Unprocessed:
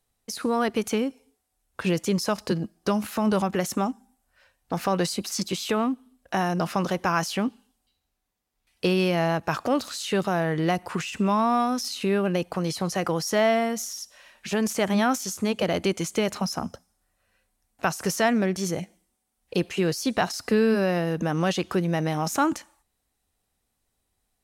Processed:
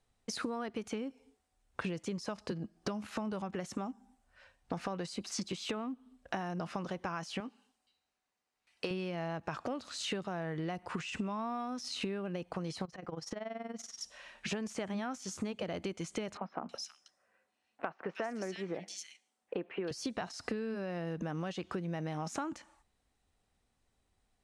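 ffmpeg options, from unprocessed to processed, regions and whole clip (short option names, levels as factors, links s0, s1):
-filter_complex "[0:a]asettb=1/sr,asplit=3[s0][s1][s2];[s0]atrim=end=7.404[s3];[s1]atrim=start=7.4:end=8.91,asetpts=PTS-STARTPTS,afade=t=in:d=0.004:c=qsin,afade=t=out:st=1.506:d=0.004:c=qsin,highpass=f=560:p=1,bandreject=f=3400:w=14[s4];[s2]atrim=start=8.906[s5];[s3][s4]acrossfade=d=0.004:c1=hsin:c2=qsin[s6];[s6][s5]acrossfade=d=0.004:c1=qsin:c2=hsin,asettb=1/sr,asplit=3[s7][s8][s9];[s7]atrim=end=12.854[s10];[s8]atrim=start=12.85:end=14.01,asetpts=PTS-STARTPTS,afade=t=in:d=0.004:c=qsin,afade=t=out:st=1.156:d=0.004:c=qsin,lowpass=f=3300:p=1,acompressor=threshold=0.0224:ratio=12:attack=3.2:release=140:knee=1:detection=peak,tremolo=f=21:d=0.824[s11];[s9]atrim=start=14.006[s12];[s10][s11]acrossfade=d=0.004:c1=hsin:c2=qsin[s13];[s13][s12]acrossfade=d=0.004:c1=qsin:c2=hsin,asettb=1/sr,asplit=3[s14][s15][s16];[s14]atrim=end=16.374[s17];[s15]atrim=start=16.37:end=19.91,asetpts=PTS-STARTPTS,afade=t=in:d=0.004:c=qsin,afade=t=out:st=3.536:d=0.004:c=qsin,highpass=310,highshelf=f=4300:g=-7.5,acrossover=split=2600[s18][s19];[s19]adelay=320[s20];[s18][s20]amix=inputs=2:normalize=0,atrim=end_sample=156114[s21];[s16]atrim=start=19.906[s22];[s17][s21]acrossfade=d=0.004:c1=hsin:c2=qsin[s23];[s23][s22]acrossfade=d=0.004:c1=qsin:c2=hsin,lowpass=f=9100:w=0.5412,lowpass=f=9100:w=1.3066,bass=f=250:g=1,treble=f=4000:g=-5,acompressor=threshold=0.02:ratio=16"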